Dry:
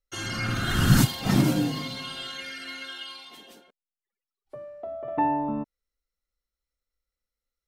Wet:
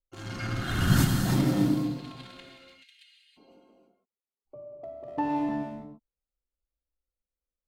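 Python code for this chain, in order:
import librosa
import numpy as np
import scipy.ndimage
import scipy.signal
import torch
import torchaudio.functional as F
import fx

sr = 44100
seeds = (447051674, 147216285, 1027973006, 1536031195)

y = fx.wiener(x, sr, points=25)
y = fx.steep_highpass(y, sr, hz=2000.0, slope=48, at=(2.48, 3.36), fade=0.02)
y = fx.rev_gated(y, sr, seeds[0], gate_ms=360, shape='flat', drr_db=1.0)
y = y * 10.0 ** (-4.5 / 20.0)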